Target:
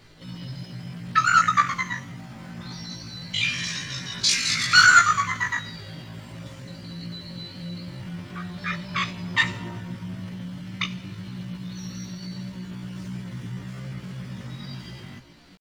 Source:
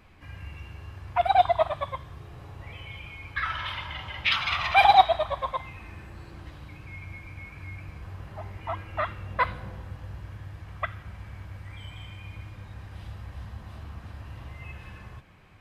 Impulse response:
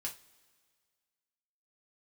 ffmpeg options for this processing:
-filter_complex "[0:a]asetrate=80880,aresample=44100,atempo=0.545254,bandreject=f=60:t=h:w=6,bandreject=f=120:t=h:w=6,asplit=2[a][b];[b]adelay=17,volume=-3dB[c];[a][c]amix=inputs=2:normalize=0,asplit=2[d][e];[1:a]atrim=start_sample=2205[f];[e][f]afir=irnorm=-1:irlink=0,volume=-6dB[g];[d][g]amix=inputs=2:normalize=0"

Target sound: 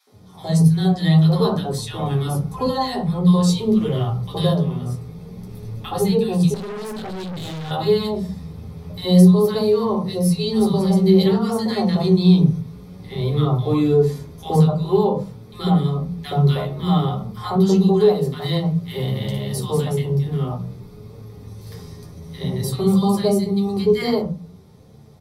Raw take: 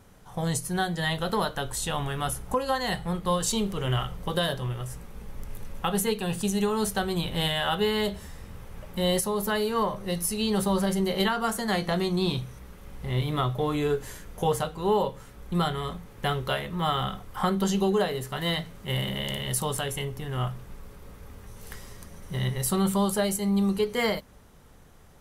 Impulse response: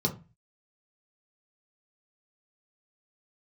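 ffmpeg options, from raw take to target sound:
-filter_complex "[0:a]acrossover=split=290|1200[a][b][c];[b]adelay=70[d];[a]adelay=120[e];[e][d][c]amix=inputs=3:normalize=0,flanger=delay=8.9:depth=3.8:regen=32:speed=0.52:shape=triangular[f];[1:a]atrim=start_sample=2205[g];[f][g]afir=irnorm=-1:irlink=0,asettb=1/sr,asplit=3[h][i][j];[h]atrim=end=6.544[k];[i]atrim=start=6.54:end=7.71,asetpts=PTS-STARTPTS,afade=t=in:d=0.004:c=qsin,afade=t=out:st=1.166:d=0.004:c=qsin,aeval=exprs='(tanh(22.4*val(0)+0.3)-tanh(0.3))/22.4':c=same[l];[j]atrim=start=7.706[m];[k][l]acrossfade=d=0.004:c1=hsin:c2=qsin[n];[n][m]acrossfade=d=0.004:c1=qsin:c2=hsin,volume=-1dB"

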